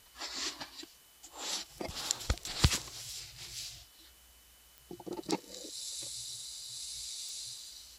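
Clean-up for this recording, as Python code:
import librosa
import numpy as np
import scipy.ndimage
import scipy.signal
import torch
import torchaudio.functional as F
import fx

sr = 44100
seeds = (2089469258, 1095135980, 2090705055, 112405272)

y = fx.fix_declick_ar(x, sr, threshold=10.0)
y = fx.notch(y, sr, hz=3000.0, q=30.0)
y = fx.noise_reduce(y, sr, print_start_s=4.28, print_end_s=4.78, reduce_db=27.0)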